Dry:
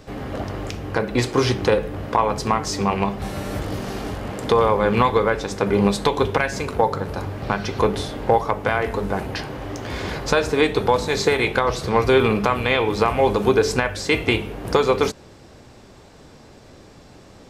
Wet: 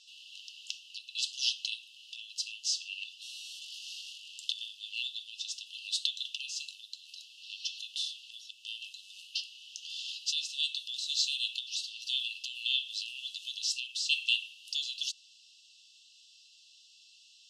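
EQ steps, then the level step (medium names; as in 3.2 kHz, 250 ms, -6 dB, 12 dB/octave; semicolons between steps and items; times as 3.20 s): brick-wall FIR high-pass 2.6 kHz; low-pass 5.9 kHz 12 dB/octave; 0.0 dB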